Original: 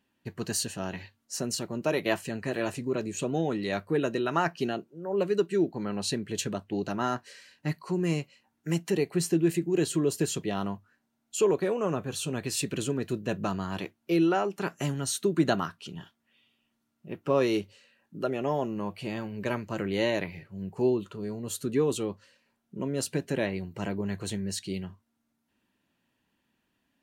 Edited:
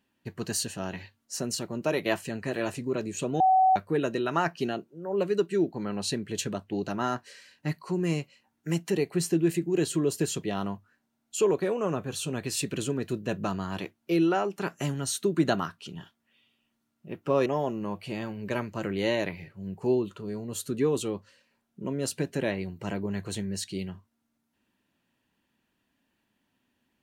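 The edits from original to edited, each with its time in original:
3.40–3.76 s: bleep 755 Hz -17 dBFS
17.46–18.41 s: delete

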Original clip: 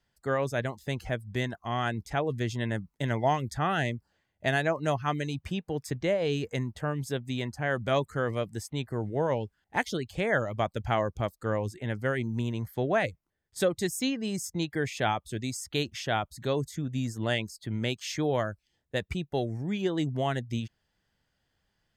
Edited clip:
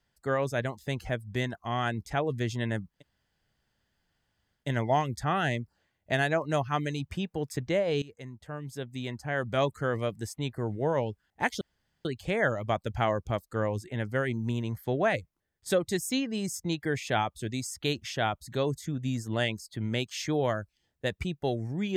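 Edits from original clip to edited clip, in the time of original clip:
2.95 s: insert room tone 1.66 s, crossfade 0.16 s
6.36–8.00 s: fade in, from -17.5 dB
9.95 s: insert room tone 0.44 s

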